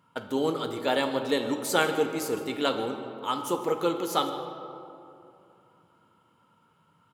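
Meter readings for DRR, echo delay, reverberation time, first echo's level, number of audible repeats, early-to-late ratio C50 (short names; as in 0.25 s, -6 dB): 4.5 dB, 0.155 s, 2.7 s, -18.5 dB, 1, 7.0 dB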